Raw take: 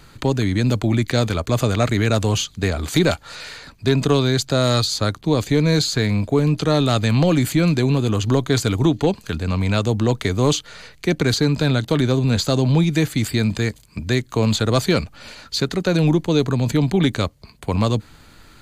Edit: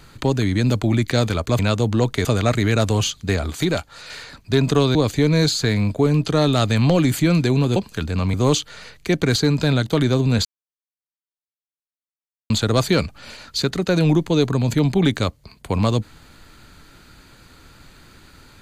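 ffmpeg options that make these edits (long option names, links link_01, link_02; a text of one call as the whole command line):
ffmpeg -i in.wav -filter_complex "[0:a]asplit=10[link_01][link_02][link_03][link_04][link_05][link_06][link_07][link_08][link_09][link_10];[link_01]atrim=end=1.592[link_11];[link_02]atrim=start=9.658:end=10.322[link_12];[link_03]atrim=start=1.588:end=2.842[link_13];[link_04]atrim=start=2.838:end=3.442,asetpts=PTS-STARTPTS,volume=-4dB[link_14];[link_05]atrim=start=3.438:end=4.292[link_15];[link_06]atrim=start=5.278:end=8.092[link_16];[link_07]atrim=start=9.078:end=9.662[link_17];[link_08]atrim=start=10.318:end=12.43,asetpts=PTS-STARTPTS,afade=type=out:start_time=2.108:duration=0.004:curve=hsin[link_18];[link_09]atrim=start=12.43:end=14.48,asetpts=PTS-STARTPTS,volume=0[link_19];[link_10]atrim=start=14.48,asetpts=PTS-STARTPTS,afade=type=in:duration=0.004:curve=hsin[link_20];[link_11][link_12]acrossfade=duration=0.004:curve1=hsin:curve2=hsin[link_21];[link_21][link_13]acrossfade=duration=0.004:curve1=hsin:curve2=hsin[link_22];[link_22][link_14]acrossfade=duration=0.004:curve1=hsin:curve2=hsin[link_23];[link_23][link_15]acrossfade=duration=0.004:curve1=hsin:curve2=hsin[link_24];[link_24][link_16]acrossfade=duration=0.004:curve1=hsin:curve2=hsin[link_25];[link_25][link_17]acrossfade=duration=0.004:curve1=hsin:curve2=hsin[link_26];[link_18][link_19][link_20]concat=n=3:v=0:a=1[link_27];[link_26][link_27]acrossfade=duration=0.004:curve1=hsin:curve2=hsin" out.wav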